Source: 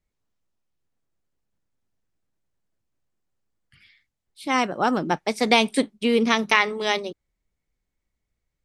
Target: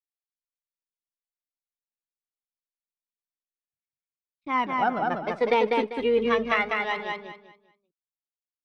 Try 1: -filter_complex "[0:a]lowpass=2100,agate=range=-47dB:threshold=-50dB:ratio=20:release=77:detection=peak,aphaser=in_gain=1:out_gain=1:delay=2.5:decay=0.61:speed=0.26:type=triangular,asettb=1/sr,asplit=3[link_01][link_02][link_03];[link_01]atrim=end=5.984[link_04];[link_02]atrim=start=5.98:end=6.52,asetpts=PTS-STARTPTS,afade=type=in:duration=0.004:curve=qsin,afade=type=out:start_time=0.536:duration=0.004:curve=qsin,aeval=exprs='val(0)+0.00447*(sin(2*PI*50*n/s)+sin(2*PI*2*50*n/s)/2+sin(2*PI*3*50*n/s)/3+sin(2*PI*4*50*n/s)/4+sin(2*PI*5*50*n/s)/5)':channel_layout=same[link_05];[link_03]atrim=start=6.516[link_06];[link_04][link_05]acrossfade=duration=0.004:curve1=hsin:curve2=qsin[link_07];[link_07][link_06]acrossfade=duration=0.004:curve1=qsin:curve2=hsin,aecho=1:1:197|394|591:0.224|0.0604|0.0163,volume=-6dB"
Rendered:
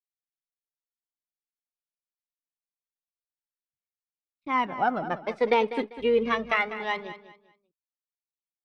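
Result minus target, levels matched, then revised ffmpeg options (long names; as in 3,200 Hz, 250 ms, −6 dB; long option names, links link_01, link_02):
echo-to-direct −10 dB
-filter_complex "[0:a]lowpass=2100,agate=range=-47dB:threshold=-50dB:ratio=20:release=77:detection=peak,aphaser=in_gain=1:out_gain=1:delay=2.5:decay=0.61:speed=0.26:type=triangular,asettb=1/sr,asplit=3[link_01][link_02][link_03];[link_01]atrim=end=5.984[link_04];[link_02]atrim=start=5.98:end=6.52,asetpts=PTS-STARTPTS,afade=type=in:duration=0.004:curve=qsin,afade=type=out:start_time=0.536:duration=0.004:curve=qsin,aeval=exprs='val(0)+0.00447*(sin(2*PI*50*n/s)+sin(2*PI*2*50*n/s)/2+sin(2*PI*3*50*n/s)/3+sin(2*PI*4*50*n/s)/4+sin(2*PI*5*50*n/s)/5)':channel_layout=same[link_05];[link_03]atrim=start=6.516[link_06];[link_04][link_05]acrossfade=duration=0.004:curve1=hsin:curve2=qsin[link_07];[link_07][link_06]acrossfade=duration=0.004:curve1=qsin:curve2=hsin,aecho=1:1:197|394|591|788:0.708|0.191|0.0516|0.0139,volume=-6dB"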